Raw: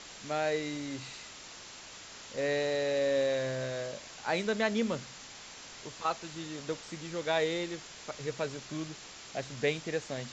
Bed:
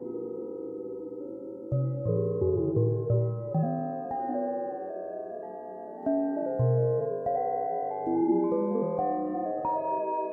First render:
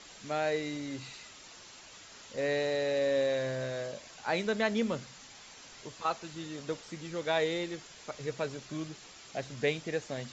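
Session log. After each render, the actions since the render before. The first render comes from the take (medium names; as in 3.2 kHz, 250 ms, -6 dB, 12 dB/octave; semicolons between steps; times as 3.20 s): noise reduction 6 dB, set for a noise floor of -49 dBFS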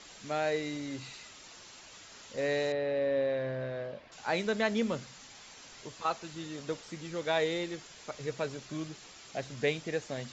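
2.72–4.12 s: distance through air 350 m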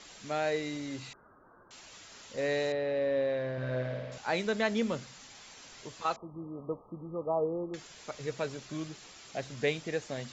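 1.13–1.71 s: rippled Chebyshev low-pass 1.6 kHz, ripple 3 dB; 3.52–4.18 s: flutter echo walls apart 9.4 m, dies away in 1.3 s; 6.16–7.74 s: brick-wall FIR low-pass 1.3 kHz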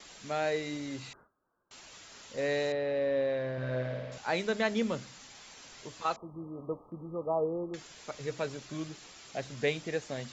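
de-hum 100.9 Hz, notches 3; gate with hold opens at -47 dBFS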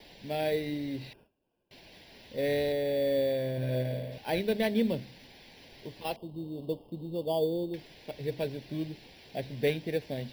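in parallel at -3.5 dB: sample-rate reducer 4 kHz, jitter 0%; on the sum: static phaser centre 3 kHz, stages 4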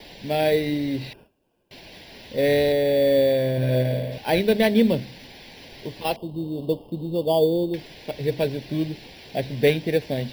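trim +9.5 dB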